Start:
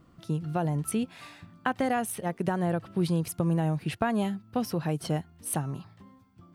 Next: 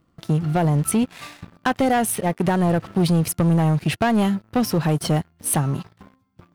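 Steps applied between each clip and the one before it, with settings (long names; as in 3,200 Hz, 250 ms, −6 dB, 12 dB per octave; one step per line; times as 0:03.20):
leveller curve on the samples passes 3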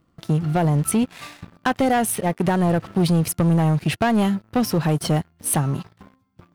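no processing that can be heard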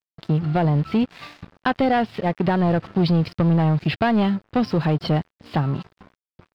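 downsampling to 11,025 Hz
dead-zone distortion −51 dBFS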